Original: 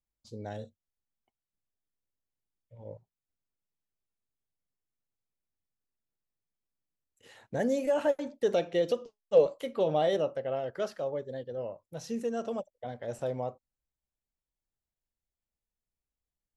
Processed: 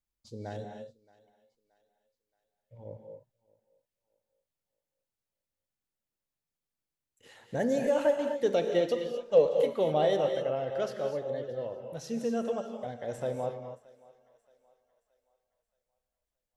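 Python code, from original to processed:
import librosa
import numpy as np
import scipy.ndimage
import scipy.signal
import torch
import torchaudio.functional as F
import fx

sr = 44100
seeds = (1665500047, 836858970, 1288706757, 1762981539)

y = fx.echo_thinned(x, sr, ms=624, feedback_pct=43, hz=420.0, wet_db=-22.0)
y = fx.rev_gated(y, sr, seeds[0], gate_ms=280, shape='rising', drr_db=5.0)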